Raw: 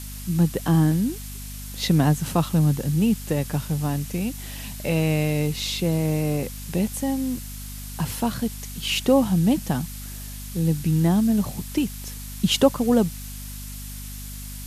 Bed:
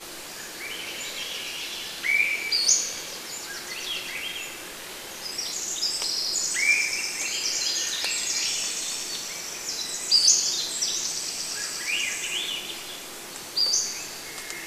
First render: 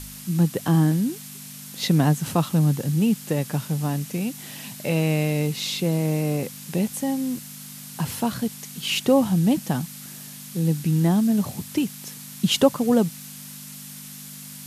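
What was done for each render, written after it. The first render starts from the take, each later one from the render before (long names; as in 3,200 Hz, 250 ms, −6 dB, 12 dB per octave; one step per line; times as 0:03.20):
hum removal 50 Hz, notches 2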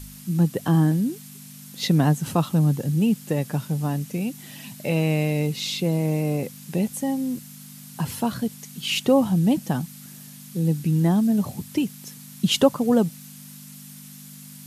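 broadband denoise 6 dB, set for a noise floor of −40 dBFS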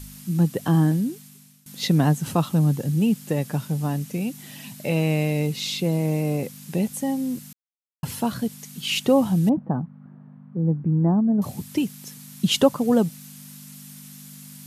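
0:00.95–0:01.66: fade out, to −19.5 dB
0:07.53–0:08.03: silence
0:09.49–0:11.42: low-pass filter 1,200 Hz 24 dB per octave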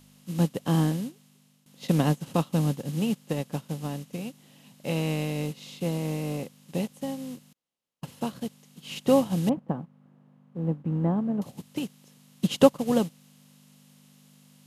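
compressor on every frequency bin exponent 0.6
expander for the loud parts 2.5 to 1, over −28 dBFS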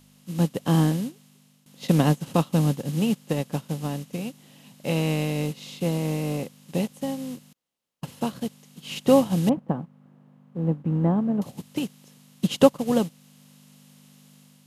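automatic gain control gain up to 3.5 dB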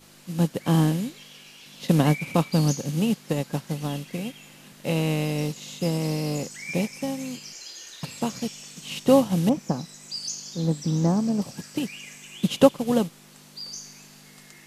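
mix in bed −14.5 dB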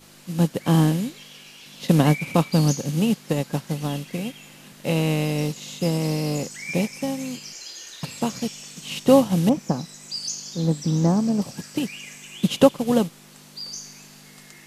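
level +2.5 dB
brickwall limiter −2 dBFS, peak gain reduction 2 dB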